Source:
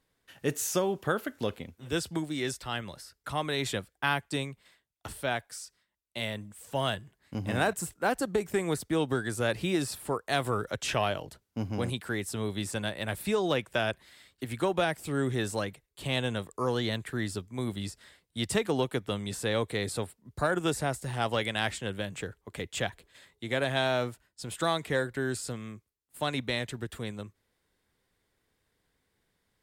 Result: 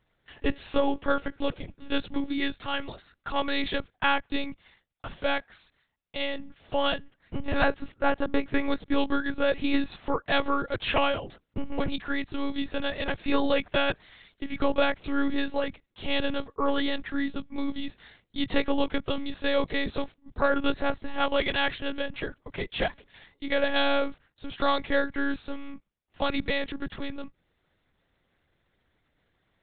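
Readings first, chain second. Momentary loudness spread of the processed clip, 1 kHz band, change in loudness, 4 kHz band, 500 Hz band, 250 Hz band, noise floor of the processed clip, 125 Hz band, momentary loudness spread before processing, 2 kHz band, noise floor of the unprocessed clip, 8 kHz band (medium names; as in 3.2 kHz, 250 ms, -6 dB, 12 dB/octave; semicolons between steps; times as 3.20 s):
13 LU, +3.5 dB, +2.5 dB, +2.5 dB, +2.0 dB, +4.0 dB, -75 dBFS, -8.0 dB, 12 LU, +3.0 dB, -78 dBFS, under -40 dB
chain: monotone LPC vocoder at 8 kHz 280 Hz; trim +4.5 dB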